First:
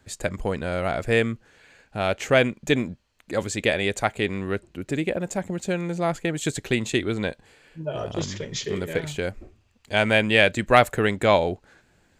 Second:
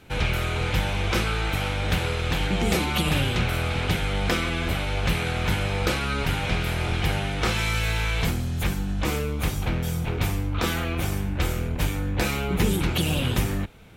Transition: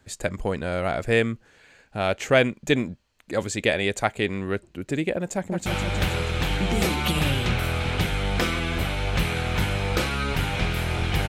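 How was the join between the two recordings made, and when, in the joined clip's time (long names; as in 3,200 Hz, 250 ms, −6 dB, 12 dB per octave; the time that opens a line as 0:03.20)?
first
0:05.35–0:05.66: delay throw 160 ms, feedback 70%, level −5 dB
0:05.66: continue with second from 0:01.56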